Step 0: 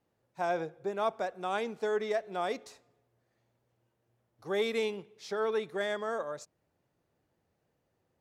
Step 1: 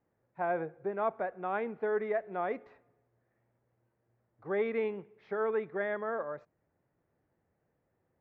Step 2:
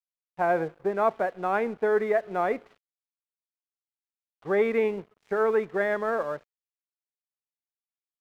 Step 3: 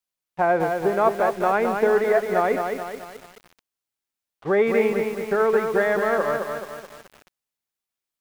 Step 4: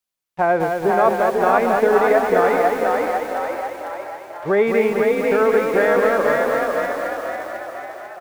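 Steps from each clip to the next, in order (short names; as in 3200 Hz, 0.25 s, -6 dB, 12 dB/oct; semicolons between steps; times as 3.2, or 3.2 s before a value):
Chebyshev low-pass 2000 Hz, order 3
crossover distortion -58 dBFS; gain +8 dB
in parallel at +1.5 dB: compressor 10:1, threshold -31 dBFS, peak gain reduction 13.5 dB; on the sum: lo-fi delay 0.215 s, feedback 55%, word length 7-bit, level -5 dB; gain +1.5 dB
frequency-shifting echo 0.495 s, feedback 55%, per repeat +40 Hz, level -3 dB; gain +2.5 dB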